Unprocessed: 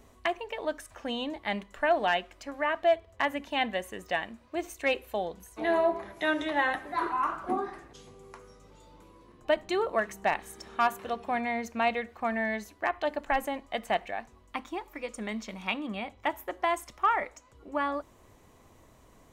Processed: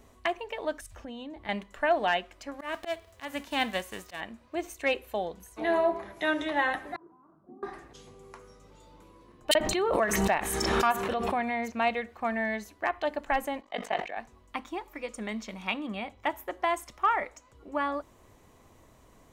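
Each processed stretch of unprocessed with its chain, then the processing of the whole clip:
0.81–1.49 low shelf 330 Hz +9.5 dB + compressor, threshold -38 dBFS + three-band expander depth 70%
2.59–4.19 spectral whitening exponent 0.6 + auto swell 0.177 s
6.96–7.63 compressor 2:1, threshold -31 dBFS + ladder band-pass 190 Hz, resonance 25%
9.51–11.72 bands offset in time highs, lows 40 ms, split 5300 Hz + backwards sustainer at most 25 dB/s
13.61–14.17 three-band isolator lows -16 dB, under 230 Hz, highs -14 dB, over 6800 Hz + ring modulator 24 Hz + sustainer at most 130 dB/s
whole clip: dry

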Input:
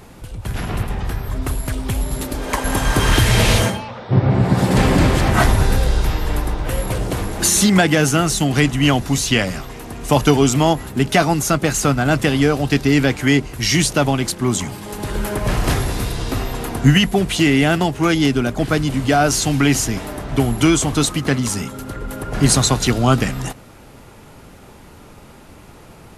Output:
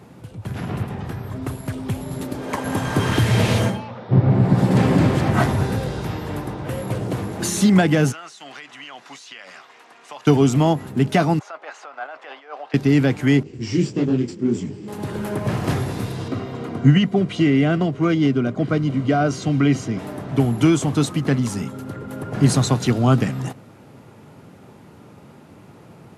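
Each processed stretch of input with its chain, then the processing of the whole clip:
8.12–10.27 HPF 1100 Hz + compressor, threshold -26 dBFS + air absorption 74 m
11.39–12.74 tape spacing loss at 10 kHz 32 dB + negative-ratio compressor -19 dBFS, ratio -0.5 + HPF 690 Hz 24 dB/oct
13.43–14.88 minimum comb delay 0.39 ms + EQ curve 150 Hz 0 dB, 410 Hz +7 dB, 630 Hz -9 dB, 7300 Hz 0 dB, 11000 Hz -28 dB + detuned doubles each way 54 cents
16.28–19.99 air absorption 80 m + notch comb 860 Hz
whole clip: HPF 110 Hz 24 dB/oct; tilt -2 dB/oct; gain -4.5 dB

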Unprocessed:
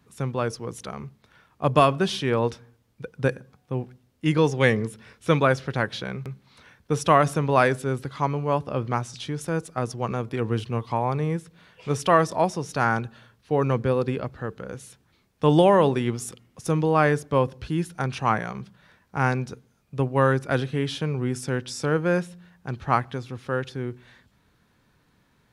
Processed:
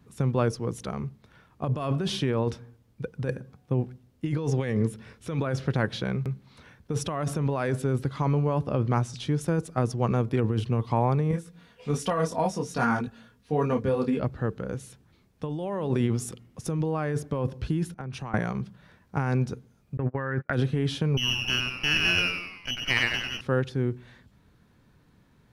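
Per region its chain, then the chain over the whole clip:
11.31–14.2 high shelf 5100 Hz +4.5 dB + comb 4.2 ms, depth 51% + detuned doubles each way 20 cents
17.94–18.34 compressor 16:1, threshold -32 dBFS + three-band expander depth 100%
19.97–20.53 synth low-pass 1800 Hz, resonance Q 4.6 + gate -30 dBFS, range -36 dB
21.17–23.41 frequency-shifting echo 95 ms, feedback 48%, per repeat +100 Hz, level -4 dB + inverted band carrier 3100 Hz + running maximum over 3 samples
whole clip: low shelf 490 Hz +8 dB; negative-ratio compressor -20 dBFS, ratio -1; gain -5 dB

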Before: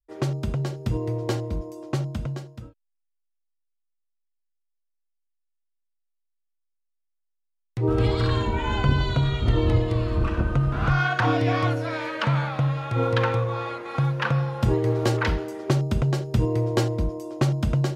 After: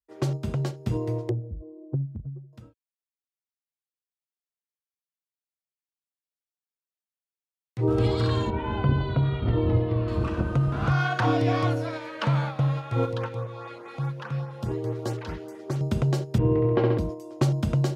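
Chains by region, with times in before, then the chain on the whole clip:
1.29–2.53 spectral contrast raised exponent 2.4 + LPF 1200 Hz 24 dB/oct + Doppler distortion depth 0.31 ms
8.5–10.08 median filter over 5 samples + air absorption 320 m
13.05–15.81 compressor 2:1, threshold -28 dBFS + LFO notch saw up 4.8 Hz 520–5100 Hz
16.38–16.98 LPF 2700 Hz 24 dB/oct + flutter echo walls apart 11.4 m, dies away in 1.2 s
whole clip: gate -28 dBFS, range -6 dB; dynamic EQ 1900 Hz, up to -5 dB, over -39 dBFS, Q 0.82; HPF 84 Hz

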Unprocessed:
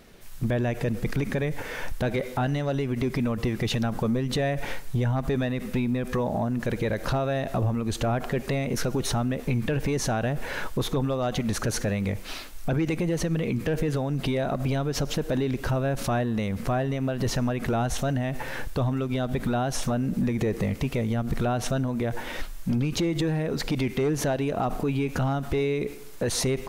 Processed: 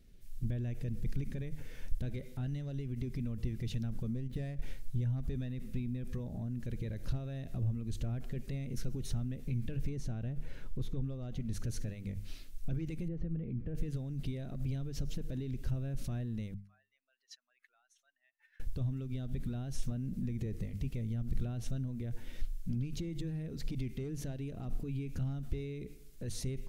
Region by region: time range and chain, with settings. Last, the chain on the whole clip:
4.13–4.62 median filter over 9 samples + transient shaper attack +3 dB, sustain -8 dB
9.89–11.52 high shelf 3000 Hz -8 dB + notch 1700 Hz, Q 23
13.08–13.75 LPF 1300 Hz + notch 1000 Hz, Q 14
16.54–18.6 spectral contrast raised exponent 1.8 + HPF 1400 Hz 24 dB/oct
whole clip: passive tone stack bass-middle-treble 10-0-1; notches 50/100/150/200 Hz; gain +4.5 dB

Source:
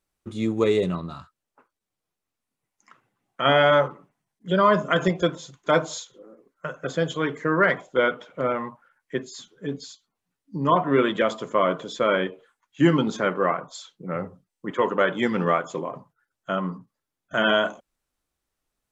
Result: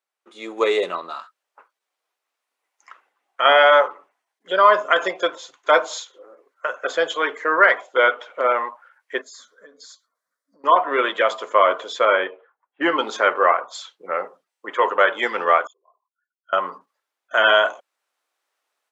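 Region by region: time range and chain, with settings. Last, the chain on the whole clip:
9.21–10.64 compressor 8:1, threshold -40 dBFS + fixed phaser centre 550 Hz, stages 8
12.05–12.99 low-pass opened by the level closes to 620 Hz, open at -17.5 dBFS + air absorption 200 m
15.67–16.53 formant sharpening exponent 3 + ladder band-pass 2900 Hz, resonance 60% + comb 2.8 ms, depth 60%
whole clip: Bessel high-pass 700 Hz, order 4; high shelf 4700 Hz -10.5 dB; AGC gain up to 11 dB

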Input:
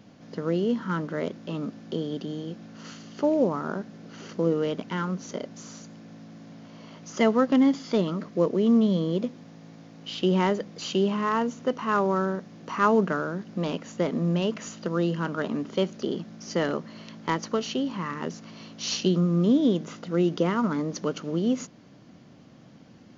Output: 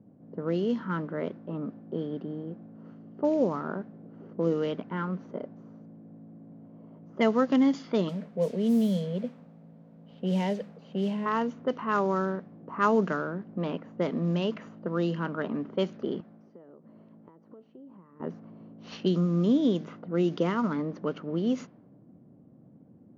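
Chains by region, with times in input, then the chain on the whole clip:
8.09–11.26 fixed phaser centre 330 Hz, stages 6 + requantised 8-bit, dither triangular
16.2–18.2 low shelf 330 Hz -9 dB + compressor 12:1, threshold -41 dBFS
whole clip: low-pass opened by the level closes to 450 Hz, open at -18 dBFS; HPF 80 Hz; gain -2.5 dB

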